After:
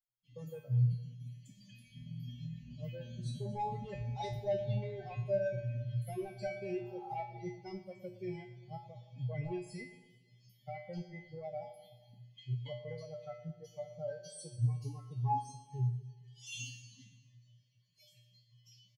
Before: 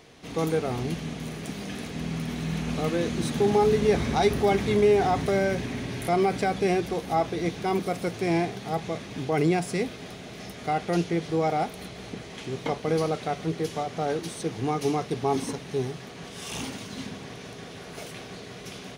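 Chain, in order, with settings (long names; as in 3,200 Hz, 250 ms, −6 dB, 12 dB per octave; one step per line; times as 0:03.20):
spectral dynamics exaggerated over time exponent 3
in parallel at −10 dB: sine wavefolder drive 11 dB, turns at −14 dBFS
on the sum: RIAA equalisation playback
downward compressor 2.5 to 1, threshold −35 dBFS, peak gain reduction 17.5 dB
low-shelf EQ 79 Hz −6.5 dB
phaser with its sweep stopped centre 330 Hz, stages 6
tuned comb filter 120 Hz, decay 0.46 s, harmonics odd, mix 100%
on a send at −17 dB: convolution reverb, pre-delay 145 ms
on the sum: healed spectral selection 0:06.72–0:07.12, 730–1,500 Hz both
repeating echo 115 ms, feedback 57%, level −16 dB
level +16 dB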